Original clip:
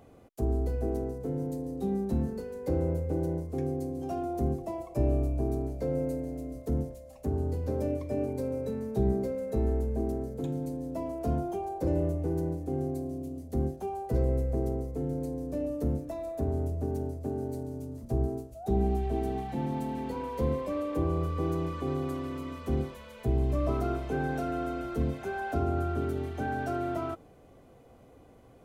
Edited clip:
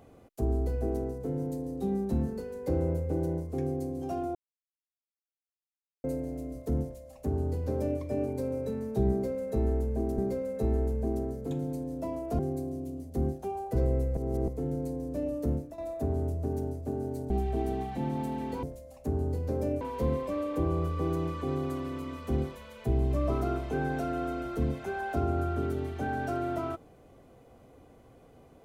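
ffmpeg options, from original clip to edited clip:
ffmpeg -i in.wav -filter_complex "[0:a]asplit=11[link_01][link_02][link_03][link_04][link_05][link_06][link_07][link_08][link_09][link_10][link_11];[link_01]atrim=end=4.35,asetpts=PTS-STARTPTS,afade=type=out:start_time=4.346:duration=0.004:curve=hsin[link_12];[link_02]atrim=start=4.35:end=6.04,asetpts=PTS-STARTPTS,volume=0[link_13];[link_03]atrim=start=6.04:end=10.182,asetpts=PTS-STARTPTS,afade=type=in:duration=0.004:curve=hsin[link_14];[link_04]atrim=start=9.108:end=11.322[link_15];[link_05]atrim=start=12.768:end=14.552[link_16];[link_06]atrim=start=14.548:end=14.862,asetpts=PTS-STARTPTS,areverse[link_17];[link_07]atrim=start=14.858:end=16.16,asetpts=PTS-STARTPTS,afade=type=out:start_time=1.042:duration=0.26:silence=0.281838[link_18];[link_08]atrim=start=16.16:end=17.682,asetpts=PTS-STARTPTS,afade=type=in:duration=0.004:curve=hsin:silence=0.281838[link_19];[link_09]atrim=start=18.868:end=20.202[link_20];[link_10]atrim=start=6.818:end=8.002[link_21];[link_11]atrim=start=20.198[link_22];[link_12][link_13][link_14]concat=n=3:v=0:a=1[link_23];[link_23][link_15]acrossfade=duration=0.004:curve1=hsin:curve2=hsin[link_24];[link_24][link_16]acrossfade=duration=0.004:curve1=hsin:curve2=hsin[link_25];[link_25][link_17]acrossfade=duration=0.004:curve1=hsin:curve2=hsin[link_26];[link_18][link_19]concat=n=2:v=0:a=1[link_27];[link_26][link_27]acrossfade=duration=0.004:curve1=hsin:curve2=hsin[link_28];[link_28][link_20]acrossfade=duration=0.004:curve1=hsin:curve2=hsin[link_29];[link_29][link_21]acrossfade=duration=0.004:curve1=hsin:curve2=hsin[link_30];[link_30][link_22]acrossfade=duration=0.004:curve1=hsin:curve2=hsin" out.wav

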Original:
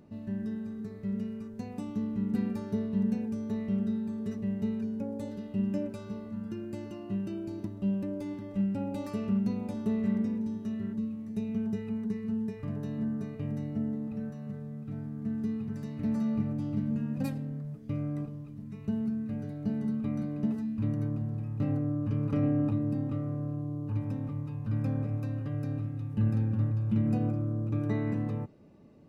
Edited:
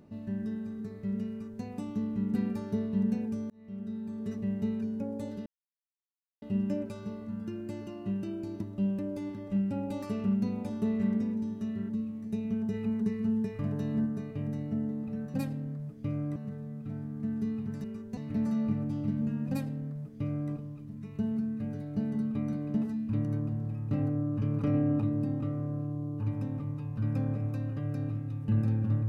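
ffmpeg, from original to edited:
ffmpeg -i in.wav -filter_complex "[0:a]asplit=9[link_01][link_02][link_03][link_04][link_05][link_06][link_07][link_08][link_09];[link_01]atrim=end=3.5,asetpts=PTS-STARTPTS,afade=type=out:start_time=3.496:duration=0.004:curve=hsin[link_10];[link_02]atrim=start=3.5:end=5.46,asetpts=PTS-STARTPTS,afade=type=in:duration=0.88,afade=type=out:start_time=1.956:duration=0.004:curve=hsin,apad=pad_dur=0.96[link_11];[link_03]atrim=start=5.46:end=11.782,asetpts=PTS-STARTPTS,afade=type=in:duration=0.004:curve=hsin[link_12];[link_04]atrim=start=11.778:end=13.102,asetpts=PTS-STARTPTS,volume=3dB[link_13];[link_05]atrim=start=13.098:end=14.382[link_14];[link_06]atrim=start=17.188:end=18.212[link_15];[link_07]atrim=start=14.378:end=15.862[link_16];[link_08]atrim=start=1.298:end=1.632[link_17];[link_09]atrim=start=15.858[link_18];[link_10][link_11][link_12]concat=n=3:v=0:a=1[link_19];[link_19][link_13]acrossfade=duration=0.004:curve1=hsin:curve2=hsin[link_20];[link_20][link_14]acrossfade=duration=0.004:curve1=hsin:curve2=hsin[link_21];[link_21][link_15]acrossfade=duration=0.004:curve1=hsin:curve2=hsin[link_22];[link_22][link_16]acrossfade=duration=0.004:curve1=hsin:curve2=hsin[link_23];[link_23][link_17]acrossfade=duration=0.004:curve1=hsin:curve2=hsin[link_24];[link_24][link_18]acrossfade=duration=0.004:curve1=hsin:curve2=hsin" out.wav

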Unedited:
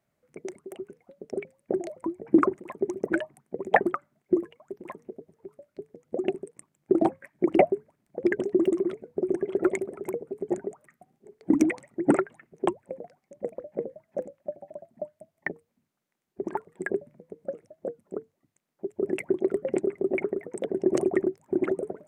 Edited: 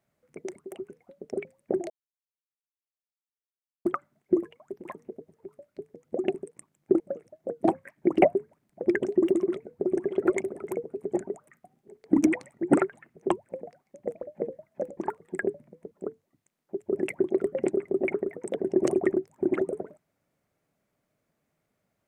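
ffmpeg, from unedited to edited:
ffmpeg -i in.wav -filter_complex "[0:a]asplit=7[link_01][link_02][link_03][link_04][link_05][link_06][link_07];[link_01]atrim=end=1.9,asetpts=PTS-STARTPTS,afade=type=out:start_time=1.896:duration=0.004:curve=hsin[link_08];[link_02]atrim=start=1.9:end=3.85,asetpts=PTS-STARTPTS,volume=0[link_09];[link_03]atrim=start=3.85:end=7.002,asetpts=PTS-STARTPTS,afade=type=in:duration=0.004:curve=hsin[link_10];[link_04]atrim=start=17.378:end=18.012[link_11];[link_05]atrim=start=6.998:end=14.342[link_12];[link_06]atrim=start=16.438:end=17.382[link_13];[link_07]atrim=start=18.008[link_14];[link_08][link_09][link_10]concat=n=3:v=0:a=1[link_15];[link_15][link_11]acrossfade=duration=0.004:curve1=hsin:curve2=hsin[link_16];[link_16][link_12]acrossfade=duration=0.004:curve1=hsin:curve2=hsin[link_17];[link_17][link_13]acrossfade=duration=0.004:curve1=hsin:curve2=hsin[link_18];[link_18][link_14]acrossfade=duration=0.004:curve1=hsin:curve2=hsin" out.wav

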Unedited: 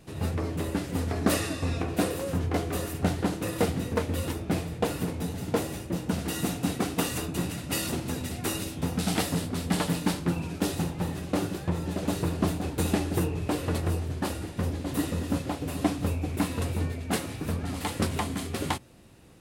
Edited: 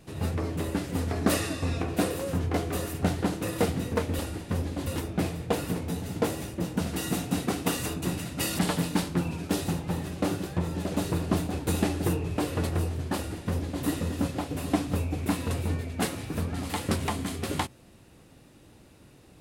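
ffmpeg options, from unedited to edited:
ffmpeg -i in.wav -filter_complex "[0:a]asplit=4[link_01][link_02][link_03][link_04];[link_01]atrim=end=4.192[link_05];[link_02]atrim=start=14.268:end=14.952[link_06];[link_03]atrim=start=4.188:end=7.912[link_07];[link_04]atrim=start=9.698[link_08];[link_05][link_06]acrossfade=duration=0.004:curve1=hsin:curve2=hsin[link_09];[link_09][link_07]acrossfade=duration=0.004:curve1=hsin:curve2=hsin[link_10];[link_10][link_08]acrossfade=duration=0.004:curve1=hsin:curve2=hsin" out.wav

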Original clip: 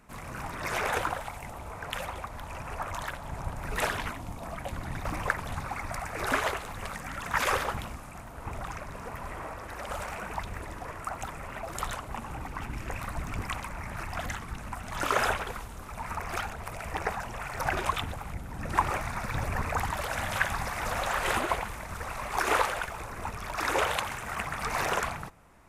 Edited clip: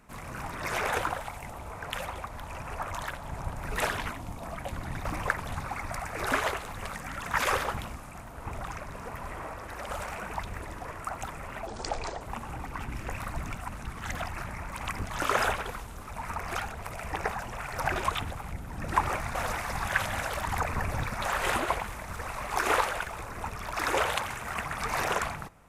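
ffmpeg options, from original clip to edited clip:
ffmpeg -i in.wav -filter_complex "[0:a]asplit=7[link_01][link_02][link_03][link_04][link_05][link_06][link_07];[link_01]atrim=end=11.674[link_08];[link_02]atrim=start=11.67:end=12.02,asetpts=PTS-STARTPTS,asetrate=28665,aresample=44100,atrim=end_sample=23746,asetpts=PTS-STARTPTS[link_09];[link_03]atrim=start=12.016:end=13.362[link_10];[link_04]atrim=start=13.358:end=14.862,asetpts=PTS-STARTPTS,areverse[link_11];[link_05]atrim=start=14.858:end=19.162[link_12];[link_06]atrim=start=19.158:end=21.032,asetpts=PTS-STARTPTS,areverse[link_13];[link_07]atrim=start=21.028[link_14];[link_08][link_09]acrossfade=duration=0.004:curve1=hsin:curve2=hsin[link_15];[link_15][link_10]acrossfade=duration=0.004:curve1=hsin:curve2=hsin[link_16];[link_16][link_11]acrossfade=duration=0.004:curve1=hsin:curve2=hsin[link_17];[link_17][link_12]acrossfade=duration=0.004:curve1=hsin:curve2=hsin[link_18];[link_18][link_13]acrossfade=duration=0.004:curve1=hsin:curve2=hsin[link_19];[link_19][link_14]acrossfade=duration=0.004:curve1=hsin:curve2=hsin" out.wav

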